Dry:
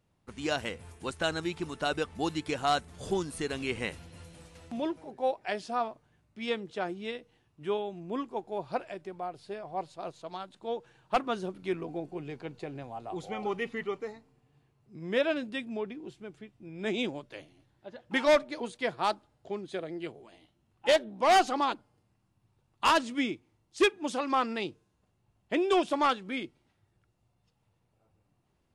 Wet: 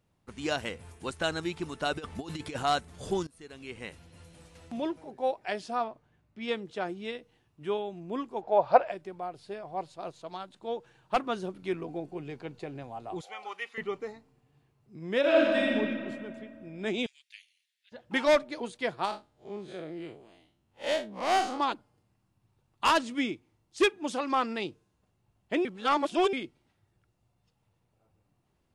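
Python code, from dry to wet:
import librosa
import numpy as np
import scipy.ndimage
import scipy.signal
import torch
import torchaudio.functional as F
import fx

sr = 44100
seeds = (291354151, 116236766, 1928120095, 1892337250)

y = fx.over_compress(x, sr, threshold_db=-35.0, ratio=-0.5, at=(1.96, 2.63))
y = fx.high_shelf(y, sr, hz=5800.0, db=-11.0, at=(5.84, 6.49))
y = fx.curve_eq(y, sr, hz=(370.0, 570.0, 5000.0, 9900.0), db=(0, 15, 1, -13), at=(8.41, 8.9), fade=0.02)
y = fx.highpass(y, sr, hz=960.0, slope=12, at=(13.21, 13.78))
y = fx.reverb_throw(y, sr, start_s=15.2, length_s=0.55, rt60_s=2.2, drr_db=-6.5)
y = fx.steep_highpass(y, sr, hz=2100.0, slope=36, at=(17.06, 17.92))
y = fx.spec_blur(y, sr, span_ms=104.0, at=(19.05, 21.6))
y = fx.edit(y, sr, fx.fade_in_from(start_s=3.27, length_s=1.49, floor_db=-22.5),
    fx.reverse_span(start_s=25.65, length_s=0.68), tone=tone)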